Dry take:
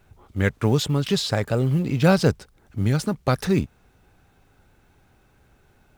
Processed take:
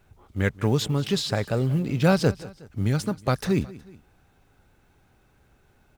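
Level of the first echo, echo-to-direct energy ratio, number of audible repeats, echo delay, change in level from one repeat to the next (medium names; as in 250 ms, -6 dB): -19.5 dB, -18.5 dB, 2, 183 ms, -6.0 dB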